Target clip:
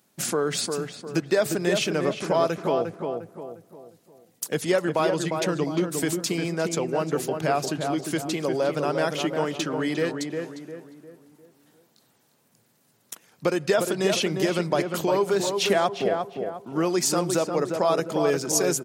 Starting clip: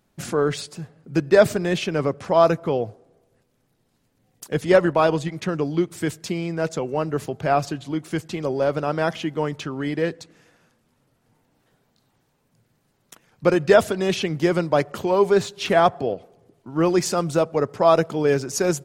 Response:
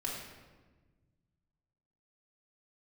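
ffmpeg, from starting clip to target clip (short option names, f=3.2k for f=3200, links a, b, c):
-filter_complex "[0:a]highpass=160,highshelf=f=4.5k:g=11.5,acompressor=threshold=-22dB:ratio=2.5,asplit=2[a][b];[b]adelay=353,lowpass=f=1.6k:p=1,volume=-4.5dB,asplit=2[c][d];[d]adelay=353,lowpass=f=1.6k:p=1,volume=0.42,asplit=2[e][f];[f]adelay=353,lowpass=f=1.6k:p=1,volume=0.42,asplit=2[g][h];[h]adelay=353,lowpass=f=1.6k:p=1,volume=0.42,asplit=2[i][j];[j]adelay=353,lowpass=f=1.6k:p=1,volume=0.42[k];[a][c][e][g][i][k]amix=inputs=6:normalize=0"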